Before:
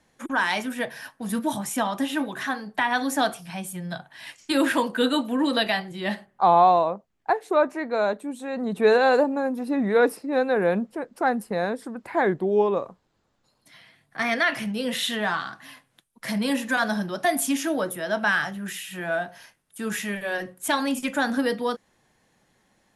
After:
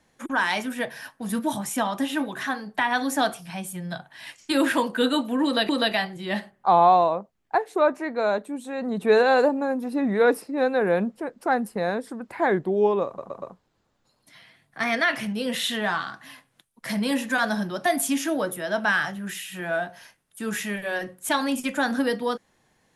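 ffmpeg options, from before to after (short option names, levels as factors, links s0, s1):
-filter_complex "[0:a]asplit=5[s0][s1][s2][s3][s4];[s0]atrim=end=5.692[s5];[s1]atrim=start=5.438:end=12.932[s6];[s2]atrim=start=12.808:end=12.932[s7];[s3]atrim=start=12.808:end=12.932[s8];[s4]atrim=start=12.808[s9];[s5][s6]acrossfade=d=0.004:c1=hsin:c2=hsin[s10];[s10][s7]acrossfade=d=0.004:c1=hsin:c2=hsin[s11];[s11][s8]acrossfade=d=0.004:c1=hsin:c2=hsin[s12];[s12][s9]acrossfade=d=0.004:c1=hsin:c2=hsin"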